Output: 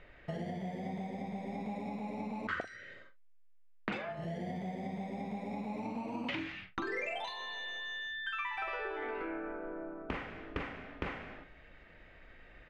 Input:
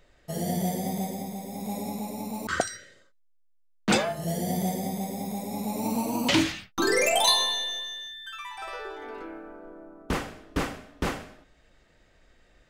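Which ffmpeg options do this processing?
-filter_complex "[0:a]acompressor=threshold=0.0112:ratio=12,lowpass=f=2300:t=q:w=1.9,asplit=2[s0][s1];[s1]adelay=43,volume=0.266[s2];[s0][s2]amix=inputs=2:normalize=0,volume=1.33"

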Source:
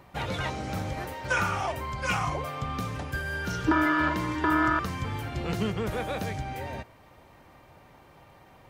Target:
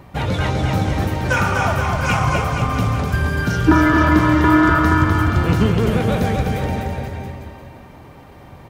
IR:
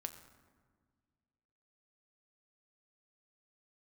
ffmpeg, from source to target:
-filter_complex "[0:a]lowshelf=f=300:g=11,aecho=1:1:250|475|677.5|859.8|1024:0.631|0.398|0.251|0.158|0.1,asplit=2[s0][s1];[1:a]atrim=start_sample=2205,lowshelf=f=89:g=-10.5[s2];[s1][s2]afir=irnorm=-1:irlink=0,volume=2[s3];[s0][s3]amix=inputs=2:normalize=0,volume=0.891"

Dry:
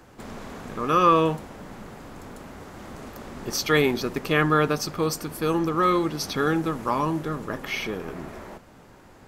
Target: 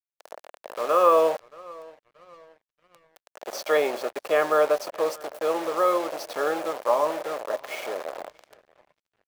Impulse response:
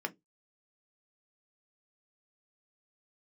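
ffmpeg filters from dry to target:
-filter_complex "[0:a]acrusher=bits=4:mix=0:aa=0.000001,highpass=f=590:t=q:w=4.9,highshelf=f=2100:g=-8,asplit=2[s0][s1];[s1]adelay=627,lowpass=f=3800:p=1,volume=0.0794,asplit=2[s2][s3];[s3]adelay=627,lowpass=f=3800:p=1,volume=0.47,asplit=2[s4][s5];[s5]adelay=627,lowpass=f=3800:p=1,volume=0.47[s6];[s0][s2][s4][s6]amix=inputs=4:normalize=0,aeval=exprs='sgn(val(0))*max(abs(val(0))-0.00282,0)':c=same,volume=0.75"

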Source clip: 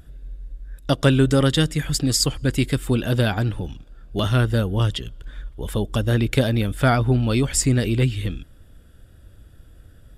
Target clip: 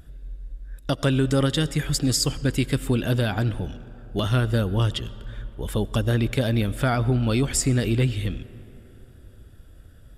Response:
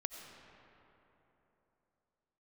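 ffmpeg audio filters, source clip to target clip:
-filter_complex "[0:a]alimiter=limit=0.266:level=0:latency=1:release=140,asplit=2[s0][s1];[1:a]atrim=start_sample=2205[s2];[s1][s2]afir=irnorm=-1:irlink=0,volume=0.355[s3];[s0][s3]amix=inputs=2:normalize=0,volume=0.708"

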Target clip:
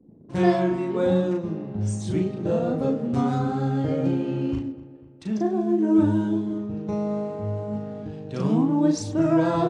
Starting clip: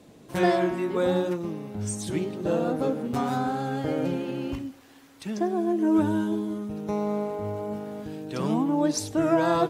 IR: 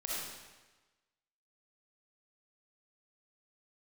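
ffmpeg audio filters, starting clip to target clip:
-filter_complex "[0:a]highpass=74,anlmdn=0.0158,lowpass=f=8200:w=0.5412,lowpass=f=8200:w=1.3066,lowshelf=f=340:g=11.5,asplit=2[s0][s1];[s1]adelay=37,volume=0.708[s2];[s0][s2]amix=inputs=2:normalize=0,asplit=2[s3][s4];[s4]adelay=247,lowpass=f=2600:p=1,volume=0.126,asplit=2[s5][s6];[s6]adelay=247,lowpass=f=2600:p=1,volume=0.55,asplit=2[s7][s8];[s8]adelay=247,lowpass=f=2600:p=1,volume=0.55,asplit=2[s9][s10];[s10]adelay=247,lowpass=f=2600:p=1,volume=0.55,asplit=2[s11][s12];[s12]adelay=247,lowpass=f=2600:p=1,volume=0.55[s13];[s5][s7][s9][s11][s13]amix=inputs=5:normalize=0[s14];[s3][s14]amix=inputs=2:normalize=0,volume=0.562"

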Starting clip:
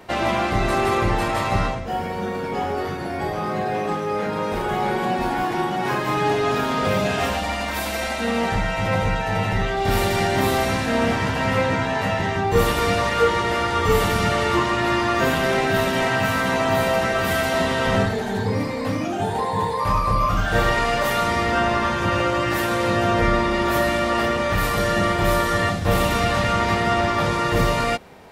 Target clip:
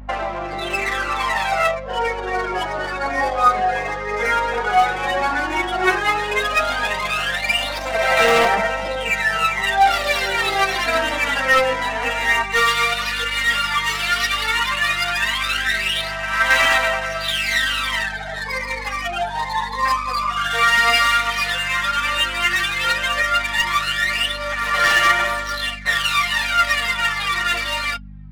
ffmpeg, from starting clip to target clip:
-af "asetnsamples=n=441:p=0,asendcmd='12.42 highpass f 1500',highpass=720,afftdn=nr=14:nf=-35,adynamicequalizer=threshold=0.0112:dfrequency=930:dqfactor=1.1:tfrequency=930:tqfactor=1.1:attack=5:release=100:ratio=0.375:range=3:mode=cutabove:tftype=bell,alimiter=level_in=1.06:limit=0.0631:level=0:latency=1:release=379,volume=0.944,dynaudnorm=f=110:g=11:m=2.99,aphaser=in_gain=1:out_gain=1:delay=4.3:decay=0.75:speed=0.12:type=sinusoidal,aeval=exprs='val(0)+0.0158*(sin(2*PI*50*n/s)+sin(2*PI*2*50*n/s)/2+sin(2*PI*3*50*n/s)/3+sin(2*PI*4*50*n/s)/4+sin(2*PI*5*50*n/s)/5)':c=same,adynamicsmooth=sensitivity=4:basefreq=1900,aeval=exprs='0.335*(abs(mod(val(0)/0.335+3,4)-2)-1)':c=same,flanger=delay=3.5:depth=2.7:regen=33:speed=0.9:shape=sinusoidal,volume=1.88"

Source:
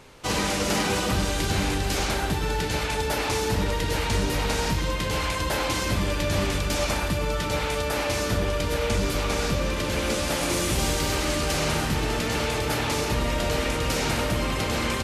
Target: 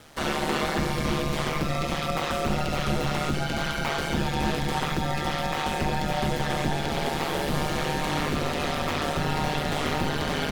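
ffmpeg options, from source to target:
-filter_complex "[0:a]aeval=exprs='val(0)*sin(2*PI*52*n/s)':c=same,asetrate=63063,aresample=44100,acrossover=split=4100[s0][s1];[s1]acompressor=threshold=0.00631:ratio=4:attack=1:release=60[s2];[s0][s2]amix=inputs=2:normalize=0,volume=1.26"

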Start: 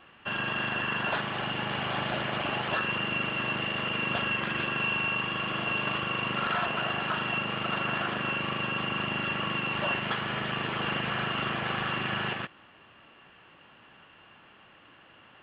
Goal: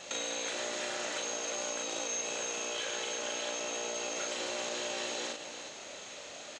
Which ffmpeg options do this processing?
-af "equalizer=f=250:w=3.9:g=12,acompressor=threshold=0.00891:ratio=16,aecho=1:1:90|838:0.631|0.376,asetrate=103194,aresample=44100,volume=2.11"

